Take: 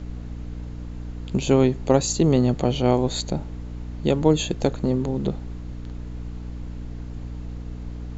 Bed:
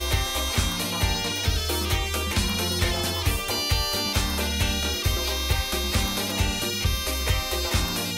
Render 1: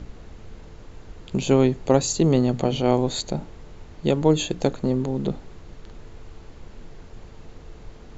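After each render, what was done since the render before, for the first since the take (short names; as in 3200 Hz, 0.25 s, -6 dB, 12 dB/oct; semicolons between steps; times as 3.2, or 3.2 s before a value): notches 60/120/180/240/300 Hz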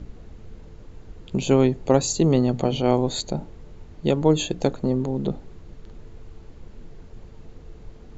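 denoiser 6 dB, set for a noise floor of -44 dBFS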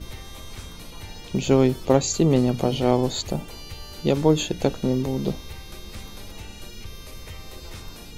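add bed -16 dB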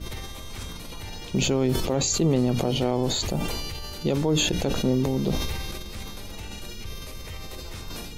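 limiter -13.5 dBFS, peak gain reduction 10 dB; sustainer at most 22 dB/s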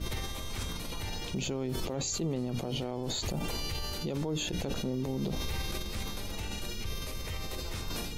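compressor, threshold -26 dBFS, peak gain reduction 8.5 dB; limiter -24.5 dBFS, peak gain reduction 8.5 dB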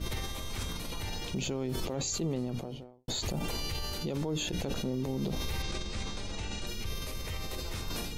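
2.35–3.08 studio fade out; 5.62–6.67 steep low-pass 8500 Hz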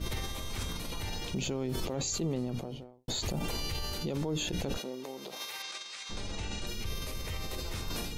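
4.77–6.09 HPF 360 Hz -> 1400 Hz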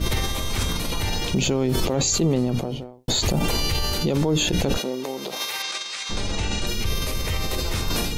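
gain +12 dB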